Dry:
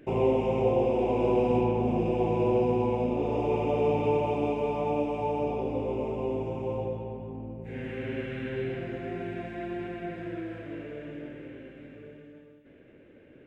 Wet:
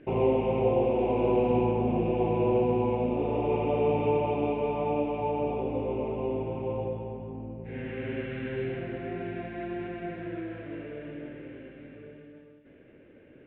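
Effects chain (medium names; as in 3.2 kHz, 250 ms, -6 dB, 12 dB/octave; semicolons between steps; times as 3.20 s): low-pass 3.5 kHz 24 dB/octave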